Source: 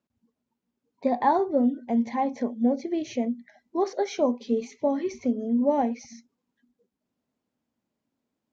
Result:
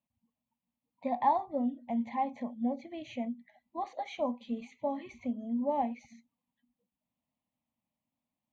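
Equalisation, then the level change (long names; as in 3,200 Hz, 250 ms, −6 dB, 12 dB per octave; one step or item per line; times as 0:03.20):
phaser with its sweep stopped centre 1,500 Hz, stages 6
−4.0 dB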